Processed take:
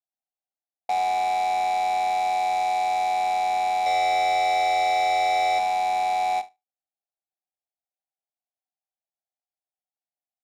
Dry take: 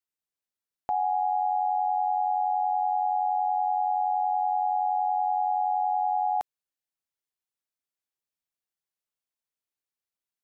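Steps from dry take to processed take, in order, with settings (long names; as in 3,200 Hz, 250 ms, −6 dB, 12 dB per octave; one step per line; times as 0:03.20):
Chebyshev band-pass filter 210–780 Hz, order 4
low shelf with overshoot 460 Hz −12 dB, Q 1.5
comb filter 1.1 ms, depth 55%
0:03.86–0:05.59: power curve on the samples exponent 0.5
in parallel at −9 dB: wrap-around overflow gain 21 dB
on the sum: high-frequency loss of the air 57 metres
repeating echo 74 ms, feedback 33%, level −12 dB
every ending faded ahead of time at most 300 dB per second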